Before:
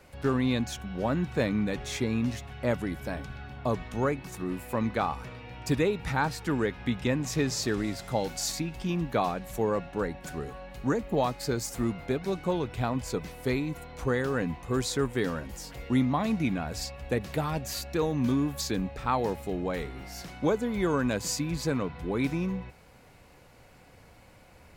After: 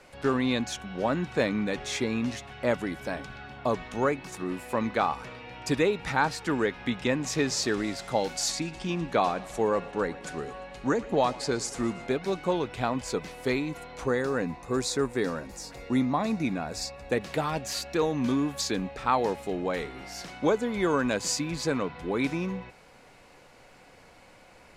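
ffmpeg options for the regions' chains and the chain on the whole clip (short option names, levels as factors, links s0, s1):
-filter_complex "[0:a]asettb=1/sr,asplit=3[s0][s1][s2];[s0]atrim=end=8.504[s3];[s1]atrim=start=8.5:end=12.07,asetpts=PTS-STARTPTS,afade=t=in:d=0.004:c=qsin,afade=t=out:st=3.566:d=0.004:c=qsin,lowpass=f=11000:w=0.5412,lowpass=f=11000:w=1.3066,aecho=1:1:116|232|348|464|580:0.1|0.059|0.0348|0.0205|0.0121,atrim=end_sample=157437[s4];[s2]atrim=start=12.066[s5];[s3][s4]acrossfade=d=0.004:c1=hsin:c2=qsin[s6];[s6][s5]acrossfade=d=0.004:c1=qsin:c2=hsin,asettb=1/sr,asplit=3[s7][s8][s9];[s7]atrim=end=14.074[s10];[s8]atrim=start=14.07:end=17.12,asetpts=PTS-STARTPTS,afade=t=in:d=0.004:c=qsin,afade=t=out:st=3.046:d=0.004:c=qsin,equalizer=f=1900:t=o:w=1.9:g=-3.5,bandreject=f=3100:w=5.3[s11];[s9]atrim=start=17.116[s12];[s10][s11]acrossfade=d=0.004:c1=hsin:c2=qsin[s13];[s13][s12]acrossfade=d=0.004:c1=qsin:c2=hsin,lowpass=9300,equalizer=f=72:t=o:w=2.5:g=-12,volume=1.5"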